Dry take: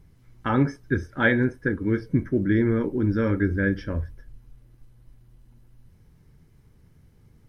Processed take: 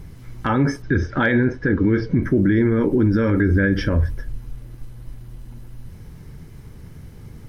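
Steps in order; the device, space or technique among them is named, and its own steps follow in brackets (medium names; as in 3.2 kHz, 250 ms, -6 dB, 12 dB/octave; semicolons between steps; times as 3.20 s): loud club master (compression 2:1, threshold -26 dBFS, peak gain reduction 6.5 dB; hard clipper -15 dBFS, distortion -43 dB; loudness maximiser +24.5 dB); 0.82–2.23 s: low-pass 5.5 kHz 24 dB/octave; trim -8.5 dB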